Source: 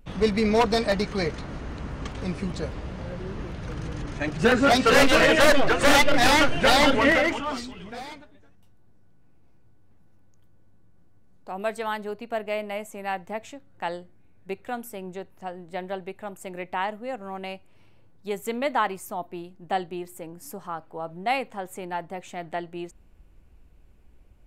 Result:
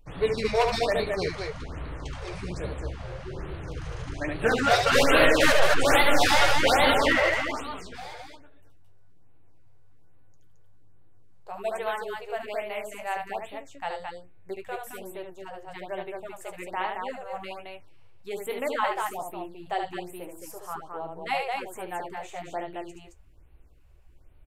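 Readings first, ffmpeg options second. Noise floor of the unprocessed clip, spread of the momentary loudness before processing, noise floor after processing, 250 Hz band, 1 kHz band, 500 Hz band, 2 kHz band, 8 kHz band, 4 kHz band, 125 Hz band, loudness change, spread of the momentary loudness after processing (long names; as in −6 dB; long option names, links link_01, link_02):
−52 dBFS, 20 LU, −50 dBFS, −6.5 dB, −1.5 dB, −2.0 dB, −1.5 dB, −2.0 dB, −1.5 dB, −3.0 dB, −2.0 dB, 21 LU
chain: -af "flanger=delay=6.4:depth=9.3:regen=-43:speed=0.19:shape=triangular,equalizer=frequency=210:width=3.1:gain=-12.5,aecho=1:1:72.89|218.7:0.562|0.631,afftfilt=real='re*(1-between(b*sr/1024,220*pow(6600/220,0.5+0.5*sin(2*PI*1.2*pts/sr))/1.41,220*pow(6600/220,0.5+0.5*sin(2*PI*1.2*pts/sr))*1.41))':imag='im*(1-between(b*sr/1024,220*pow(6600/220,0.5+0.5*sin(2*PI*1.2*pts/sr))/1.41,220*pow(6600/220,0.5+0.5*sin(2*PI*1.2*pts/sr))*1.41))':win_size=1024:overlap=0.75,volume=1dB"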